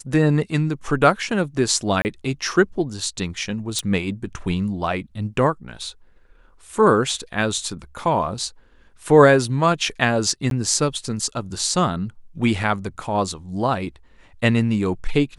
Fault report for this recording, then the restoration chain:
0:02.02–0:02.05: drop-out 29 ms
0:03.79: click −10 dBFS
0:10.50–0:10.51: drop-out 12 ms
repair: click removal
repair the gap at 0:02.02, 29 ms
repair the gap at 0:10.50, 12 ms

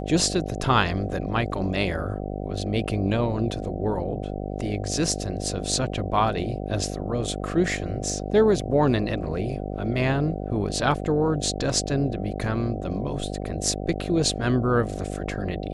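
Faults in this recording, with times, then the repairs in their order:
mains buzz 50 Hz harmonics 15 −31 dBFS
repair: hum removal 50 Hz, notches 15

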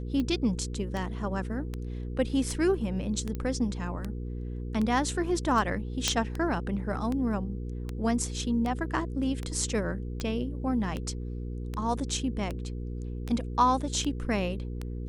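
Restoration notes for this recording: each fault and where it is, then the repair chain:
mains hum 60 Hz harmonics 8 −35 dBFS
scratch tick 78 rpm −20 dBFS
0:03.35: click −22 dBFS
0:06.08: click −9 dBFS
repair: click removal
hum removal 60 Hz, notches 8

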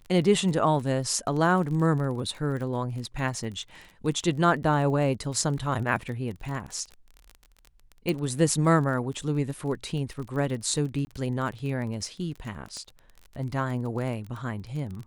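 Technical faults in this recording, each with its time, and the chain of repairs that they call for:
surface crackle 25 per second −34 dBFS
0:08.09: click
0:11.05–0:11.07: drop-out 20 ms
0:12.77: click −27 dBFS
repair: click removal
repair the gap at 0:11.05, 20 ms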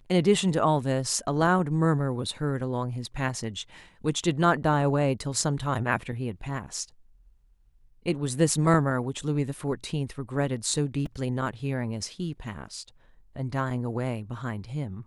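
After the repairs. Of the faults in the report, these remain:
none of them is left

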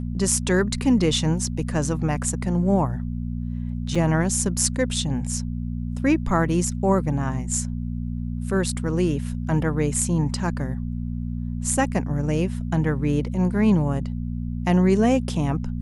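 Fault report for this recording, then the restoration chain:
mains hum 60 Hz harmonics 4 −28 dBFS
0:03.95: drop-out 4.9 ms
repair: hum removal 60 Hz, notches 4
repair the gap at 0:03.95, 4.9 ms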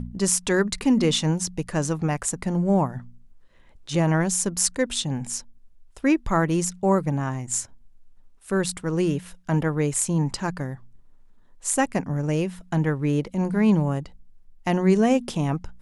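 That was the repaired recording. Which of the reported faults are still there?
none of them is left

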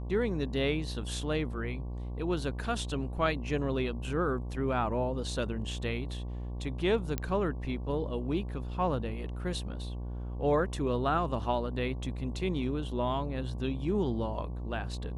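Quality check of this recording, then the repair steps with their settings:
mains buzz 60 Hz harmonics 19 −37 dBFS
0:07.18: click −17 dBFS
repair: click removal
hum removal 60 Hz, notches 19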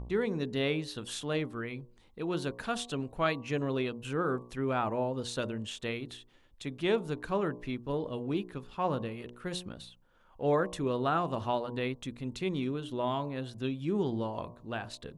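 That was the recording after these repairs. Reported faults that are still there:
none of them is left

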